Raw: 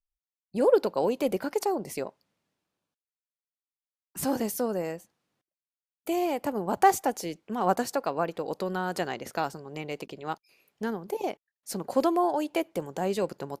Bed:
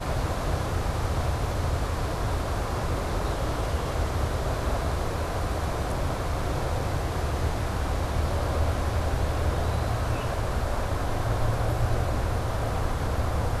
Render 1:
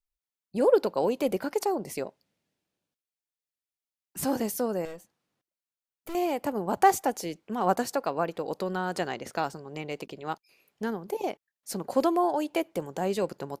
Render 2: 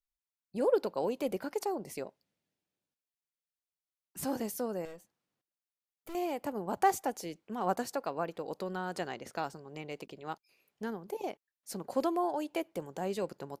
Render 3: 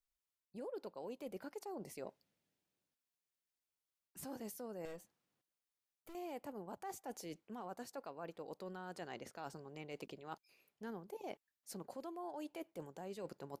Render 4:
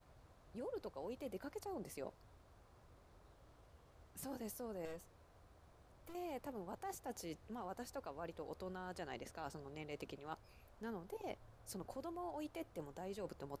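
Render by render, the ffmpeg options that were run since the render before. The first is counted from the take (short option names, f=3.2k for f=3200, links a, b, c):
-filter_complex "[0:a]asettb=1/sr,asplit=3[a][b][c];[a]atrim=end=2.054[d];[b]atrim=start=2.05:end=4.19,asetpts=PTS-STARTPTS,afade=t=in:d=0.004:c=qsin,afade=t=out:st=2.136:d=0.004:c=qsin,equalizer=f=1.1k:t=o:w=0.77:g=-6.5[e];[c]atrim=start=4.186[f];[d][e]acrossfade=d=0.004:c1=hsin:c2=qsin[g];[g][f]acrossfade=d=0.004:c1=qsin:c2=hsin,asettb=1/sr,asplit=3[h][i][j];[h]atrim=end=4.854[k];[i]atrim=start=4.85:end=6.15,asetpts=PTS-STARTPTS,afade=t=in:d=0.004:c=qsin,afade=t=out:st=1.296:d=0.004:c=qsin,aeval=exprs='(tanh(56.2*val(0)+0.45)-tanh(0.45))/56.2':c=same[l];[j]atrim=start=6.146[m];[k][l]acrossfade=d=0.004:c1=hsin:c2=qsin[n];[n][m]acrossfade=d=0.004:c1=qsin:c2=hsin,asettb=1/sr,asplit=3[o][p][q];[o]atrim=end=8.644[r];[p]atrim=start=8.64:end=10.01,asetpts=PTS-STARTPTS,afade=t=in:d=0.004:c=qsin,afade=t=out:st=1.366:d=0.004:c=qsin,equalizer=f=12k:t=o:w=0.21:g=-9[s];[q]atrim=start=10.006[t];[r][s]acrossfade=d=0.004:c1=hsin:c2=qsin[u];[u][t]acrossfade=d=0.004:c1=qsin:c2=hsin"
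-af "volume=-6.5dB"
-af "alimiter=level_in=2dB:limit=-24dB:level=0:latency=1:release=440,volume=-2dB,areverse,acompressor=threshold=-44dB:ratio=6,areverse"
-filter_complex "[1:a]volume=-37.5dB[a];[0:a][a]amix=inputs=2:normalize=0"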